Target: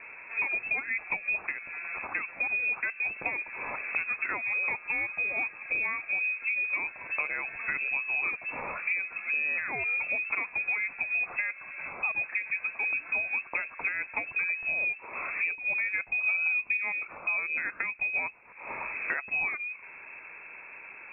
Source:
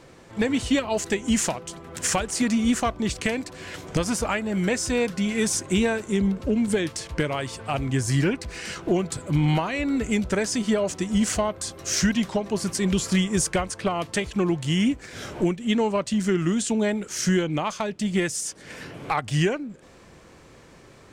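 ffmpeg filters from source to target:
ffmpeg -i in.wav -filter_complex "[0:a]asettb=1/sr,asplit=3[link_01][link_02][link_03];[link_01]atrim=end=16.234[link_04];[link_02]atrim=start=16.23:end=16.77,asetpts=PTS-STARTPTS,afade=type=in:duration=0.004:curve=qsin,afade=type=out:start_time=0.536:duration=0.004:curve=qsin,lowshelf=frequency=400:gain=12[link_05];[link_03]atrim=start=16.766[link_06];[link_04][link_05]acrossfade=duration=0.004:curve1=hsin:curve2=qsin[link_07];[link_07][link_06]acrossfade=duration=0.004:curve1=qsin:curve2=hsin,acompressor=threshold=-34dB:ratio=4,lowpass=frequency=2300:width_type=q:width=0.5098,lowpass=frequency=2300:width_type=q:width=0.6013,lowpass=frequency=2300:width_type=q:width=0.9,lowpass=frequency=2300:width_type=q:width=2.563,afreqshift=-2700,volume=4dB" out.wav

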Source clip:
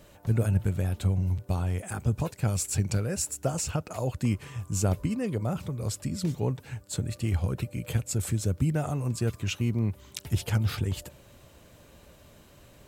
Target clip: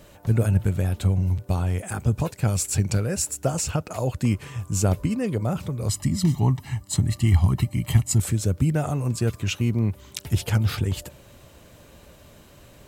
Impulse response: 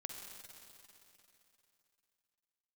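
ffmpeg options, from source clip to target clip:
-filter_complex "[0:a]asettb=1/sr,asplit=3[link_01][link_02][link_03];[link_01]atrim=end=5.894[link_04];[link_02]atrim=start=5.89:end=8.2,asetpts=PTS-STARTPTS,afade=type=in:duration=0.004:curve=qsin,afade=type=out:start_time=2.306:duration=0.004:curve=qsin,aecho=1:1:1:0.9,atrim=end_sample=101871[link_05];[link_03]atrim=start=8.196[link_06];[link_04][link_05]acrossfade=duration=0.004:curve1=hsin:curve2=qsin[link_07];[link_07][link_06]acrossfade=duration=0.004:curve1=qsin:curve2=hsin,volume=4.5dB"

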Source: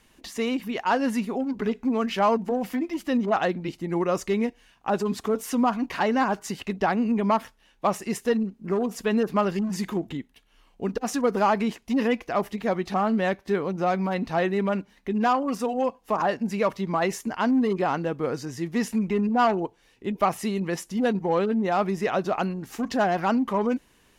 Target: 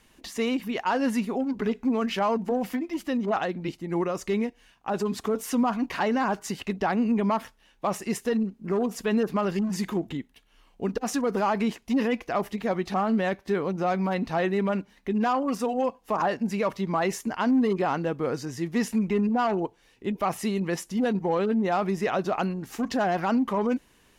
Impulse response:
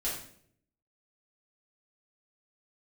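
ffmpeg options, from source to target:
-filter_complex "[0:a]alimiter=limit=-16.5dB:level=0:latency=1:release=19,asplit=3[link_01][link_02][link_03];[link_01]afade=type=out:start_time=2.75:duration=0.02[link_04];[link_02]tremolo=f=3:d=0.35,afade=type=in:start_time=2.75:duration=0.02,afade=type=out:start_time=5.12:duration=0.02[link_05];[link_03]afade=type=in:start_time=5.12:duration=0.02[link_06];[link_04][link_05][link_06]amix=inputs=3:normalize=0"

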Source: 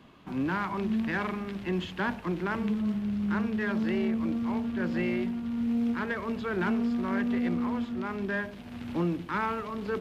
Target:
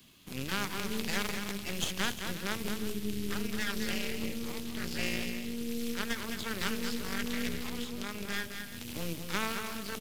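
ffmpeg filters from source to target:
ffmpeg -i in.wav -filter_complex "[0:a]equalizer=frequency=990:width_type=o:width=2.7:gain=-13,acrossover=split=220|750|2700[link_01][link_02][link_03][link_04];[link_02]acompressor=threshold=-45dB:ratio=6[link_05];[link_01][link_05][link_03][link_04]amix=inputs=4:normalize=0,crystalizer=i=9:c=0,aeval=exprs='0.126*(cos(1*acos(clip(val(0)/0.126,-1,1)))-cos(1*PI/2))+0.0112*(cos(3*acos(clip(val(0)/0.126,-1,1)))-cos(3*PI/2))+0.0562*(cos(4*acos(clip(val(0)/0.126,-1,1)))-cos(4*PI/2))':channel_layout=same,aecho=1:1:213|348:0.447|0.168,volume=-2dB" out.wav

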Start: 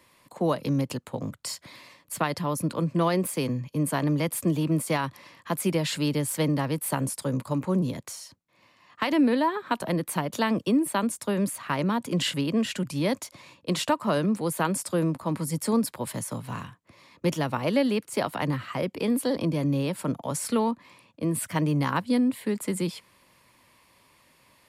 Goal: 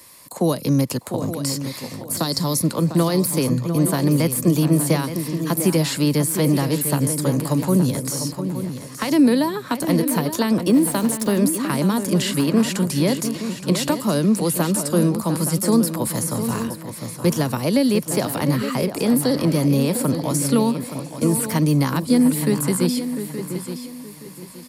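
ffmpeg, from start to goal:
ffmpeg -i in.wav -filter_complex "[0:a]acrossover=split=450|3000[link_01][link_02][link_03];[link_02]acompressor=threshold=-33dB:ratio=6[link_04];[link_01][link_04][link_03]amix=inputs=3:normalize=0,asettb=1/sr,asplit=3[link_05][link_06][link_07];[link_05]atrim=end=2.174[link_08];[link_06]atrim=start=2.17:end=2.64,asetpts=PTS-STARTPTS,afade=type=in:duration=0.004:curve=qsin,afade=type=out:start_time=0.466:duration=0.004:curve=qsin,highshelf=frequency=3300:width_type=q:width=3:gain=9.5[link_09];[link_07]atrim=start=2.636[link_10];[link_08][link_09]acrossfade=duration=0.004:curve1=hsin:curve2=qsin[link_11];[link_11][link_10]acrossfade=duration=0.004:curve1=qsin:curve2=hsin,acrossover=split=2700[link_12][link_13];[link_13]acompressor=threshold=-42dB:ratio=4:attack=1:release=60[link_14];[link_12][link_14]amix=inputs=2:normalize=0,aexciter=amount=4.2:drive=2.9:freq=4300,asplit=2[link_15][link_16];[link_16]aecho=0:1:871|1742|2613:0.282|0.0846|0.0254[link_17];[link_15][link_17]amix=inputs=2:normalize=0,asettb=1/sr,asplit=3[link_18][link_19][link_20];[link_18]atrim=end=10.734[link_21];[link_19]atrim=start=10.73:end=11.4,asetpts=PTS-STARTPTS,afade=type=in:duration=0.004:curve=qsin,afade=type=out:start_time=0.666:duration=0.004:curve=qsin,aeval=exprs='val(0)*gte(abs(val(0)),0.01)':channel_layout=same[link_22];[link_20]atrim=start=11.396[link_23];[link_21][link_22]acrossfade=duration=0.004:curve1=hsin:curve2=qsin[link_24];[link_24][link_23]acrossfade=duration=0.004:curve1=qsin:curve2=hsin,asplit=2[link_25][link_26];[link_26]adelay=699.7,volume=-9dB,highshelf=frequency=4000:gain=-15.7[link_27];[link_25][link_27]amix=inputs=2:normalize=0,volume=7.5dB" out.wav

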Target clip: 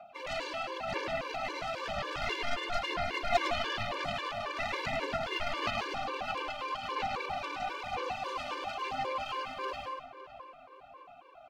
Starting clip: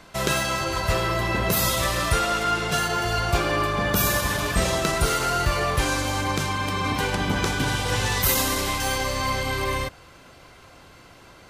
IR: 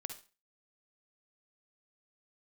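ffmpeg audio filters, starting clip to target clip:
-filter_complex "[0:a]lowpass=3700,bandreject=frequency=50:width_type=h:width=6,bandreject=frequency=100:width_type=h:width=6,bandreject=frequency=150:width_type=h:width=6,bandreject=frequency=200:width_type=h:width=6,bandreject=frequency=250:width_type=h:width=6,bandreject=frequency=300:width_type=h:width=6,bandreject=frequency=350:width_type=h:width=6,bandreject=frequency=400:width_type=h:width=6,acrusher=bits=3:mode=log:mix=0:aa=0.000001,asplit=3[link_01][link_02][link_03];[link_01]bandpass=frequency=730:width_type=q:width=8,volume=0dB[link_04];[link_02]bandpass=frequency=1090:width_type=q:width=8,volume=-6dB[link_05];[link_03]bandpass=frequency=2440:width_type=q:width=8,volume=-9dB[link_06];[link_04][link_05][link_06]amix=inputs=3:normalize=0,aeval=exprs='0.106*(cos(1*acos(clip(val(0)/0.106,-1,1)))-cos(1*PI/2))+0.0422*(cos(7*acos(clip(val(0)/0.106,-1,1)))-cos(7*PI/2))':channel_layout=same,aphaser=in_gain=1:out_gain=1:delay=3.4:decay=0.49:speed=1:type=sinusoidal,asplit=2[link_07][link_08];[link_08]adelay=560,lowpass=frequency=2100:poles=1,volume=-12dB,asplit=2[link_09][link_10];[link_10]adelay=560,lowpass=frequency=2100:poles=1,volume=0.45,asplit=2[link_11][link_12];[link_12]adelay=560,lowpass=frequency=2100:poles=1,volume=0.45,asplit=2[link_13][link_14];[link_14]adelay=560,lowpass=frequency=2100:poles=1,volume=0.45,asplit=2[link_15][link_16];[link_16]adelay=560,lowpass=frequency=2100:poles=1,volume=0.45[link_17];[link_07][link_09][link_11][link_13][link_15][link_17]amix=inputs=6:normalize=0,asplit=2[link_18][link_19];[1:a]atrim=start_sample=2205,adelay=105[link_20];[link_19][link_20]afir=irnorm=-1:irlink=0,volume=-0.5dB[link_21];[link_18][link_21]amix=inputs=2:normalize=0,afftfilt=real='re*gt(sin(2*PI*3.7*pts/sr)*(1-2*mod(floor(b*sr/1024/300),2)),0)':imag='im*gt(sin(2*PI*3.7*pts/sr)*(1-2*mod(floor(b*sr/1024/300),2)),0)':win_size=1024:overlap=0.75"

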